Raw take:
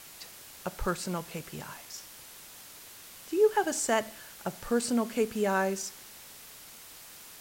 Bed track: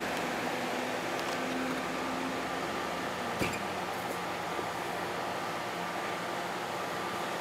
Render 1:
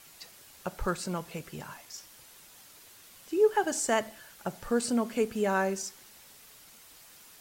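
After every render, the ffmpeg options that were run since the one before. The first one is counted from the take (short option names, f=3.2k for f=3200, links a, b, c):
-af "afftdn=nr=6:nf=-50"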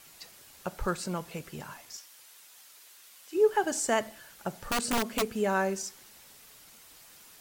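-filter_complex "[0:a]asplit=3[a][b][c];[a]afade=t=out:st=1.96:d=0.02[d];[b]highpass=f=1.1k:p=1,afade=t=in:st=1.96:d=0.02,afade=t=out:st=3.34:d=0.02[e];[c]afade=t=in:st=3.34:d=0.02[f];[d][e][f]amix=inputs=3:normalize=0,asplit=3[g][h][i];[g]afade=t=out:st=4.57:d=0.02[j];[h]aeval=exprs='(mod(11.9*val(0)+1,2)-1)/11.9':c=same,afade=t=in:st=4.57:d=0.02,afade=t=out:st=5.21:d=0.02[k];[i]afade=t=in:st=5.21:d=0.02[l];[j][k][l]amix=inputs=3:normalize=0"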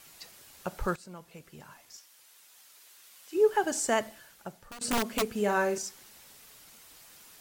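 -filter_complex "[0:a]asettb=1/sr,asplit=3[a][b][c];[a]atrim=end=5.334[d];[b]atrim=start=5.33:end=5.78,asetpts=PTS-STARTPTS,afade=t=in:d=0.004:c=qsin,afade=t=out:st=0.446:d=0.004:c=qsin,asplit=2[e][f];[f]adelay=44,volume=-7dB[g];[e][g]amix=inputs=2:normalize=0,atrim=end_sample=19845[h];[c]atrim=start=5.776[i];[d][h]acrossfade=d=0.004:c1=hsin:c2=qsin[j];[j][i]acrossfade=d=0.004:c1=qsin:c2=hsin,asplit=3[k][l][m];[k]atrim=end=0.96,asetpts=PTS-STARTPTS,afade=t=out:st=0.956:d=0.004:c=hsin:silence=0.188365[n];[l]atrim=start=0.96:end=4.81,asetpts=PTS-STARTPTS,afade=t=in:d=2.44:silence=0.188365,afade=t=out:st=3.02:d=0.83:silence=0.0841395[o];[m]atrim=start=4.81,asetpts=PTS-STARTPTS,afade=t=in:d=0.004:c=hsin:silence=0.0841395[p];[n][o][p]concat=n=3:v=0:a=1"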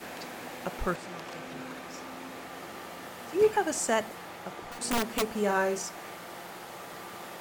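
-filter_complex "[1:a]volume=-8dB[a];[0:a][a]amix=inputs=2:normalize=0"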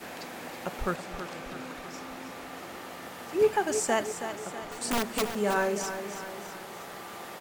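-af "aecho=1:1:324|648|972|1296|1620|1944:0.335|0.171|0.0871|0.0444|0.0227|0.0116"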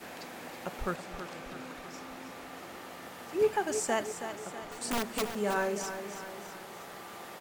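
-af "volume=-3.5dB"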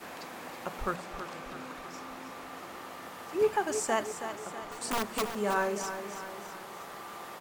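-af "equalizer=f=1.1k:t=o:w=0.53:g=5.5,bandreject=f=60:t=h:w=6,bandreject=f=120:t=h:w=6,bandreject=f=180:t=h:w=6,bandreject=f=240:t=h:w=6"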